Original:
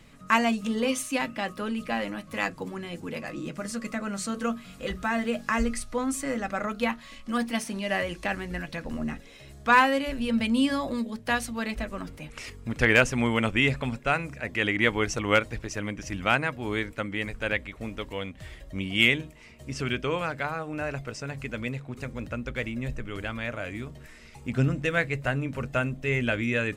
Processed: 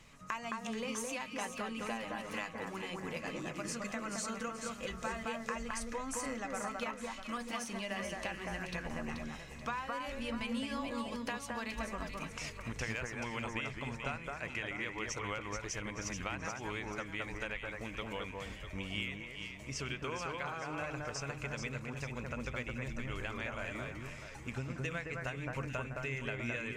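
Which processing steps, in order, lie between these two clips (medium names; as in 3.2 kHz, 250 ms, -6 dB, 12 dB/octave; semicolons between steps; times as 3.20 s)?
fifteen-band graphic EQ 250 Hz -4 dB, 1 kHz +6 dB, 2.5 kHz +4 dB, 6.3 kHz +8 dB; compression 12:1, threshold -30 dBFS, peak gain reduction 21 dB; echo whose repeats swap between lows and highs 216 ms, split 1.9 kHz, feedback 63%, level -2 dB; trim -6.5 dB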